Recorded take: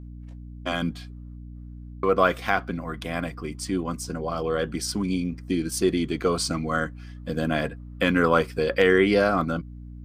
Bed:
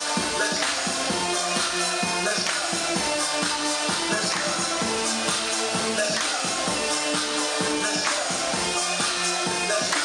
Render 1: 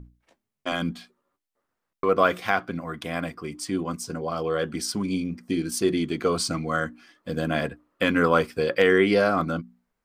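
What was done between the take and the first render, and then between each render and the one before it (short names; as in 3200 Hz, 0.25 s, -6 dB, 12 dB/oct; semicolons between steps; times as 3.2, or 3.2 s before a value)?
notches 60/120/180/240/300/360 Hz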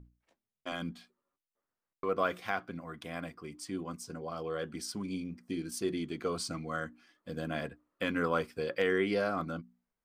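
gain -10.5 dB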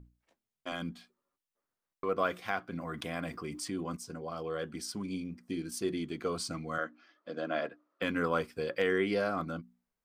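2.72–3.97 fast leveller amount 50%; 6.78–8.02 speaker cabinet 290–5600 Hz, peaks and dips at 320 Hz +4 dB, 620 Hz +8 dB, 1300 Hz +7 dB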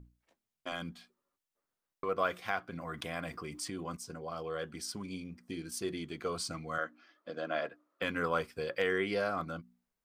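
dynamic EQ 260 Hz, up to -6 dB, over -47 dBFS, Q 1.1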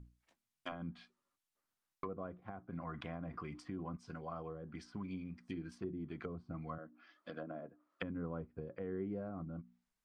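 treble ducked by the level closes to 400 Hz, closed at -33.5 dBFS; bell 470 Hz -7.5 dB 1 oct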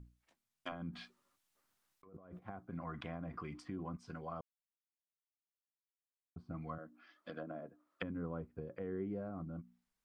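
0.93–2.39 negative-ratio compressor -55 dBFS; 4.41–6.36 mute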